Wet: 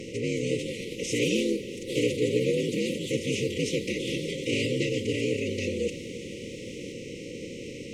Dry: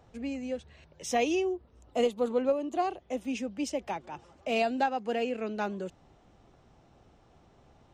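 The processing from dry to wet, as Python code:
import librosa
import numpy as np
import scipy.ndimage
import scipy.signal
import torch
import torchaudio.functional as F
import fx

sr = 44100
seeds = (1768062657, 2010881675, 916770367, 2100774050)

y = fx.bin_compress(x, sr, power=0.4)
y = y * np.sin(2.0 * np.pi * 80.0 * np.arange(len(y)) / sr)
y = fx.pitch_keep_formants(y, sr, semitones=-5.0)
y = fx.echo_pitch(y, sr, ms=245, semitones=3, count=3, db_per_echo=-6.0)
y = fx.brickwall_bandstop(y, sr, low_hz=550.0, high_hz=1900.0)
y = y + 10.0 ** (-17.5 / 20.0) * np.pad(y, (int(327 * sr / 1000.0), 0))[:len(y)]
y = y * librosa.db_to_amplitude(3.5)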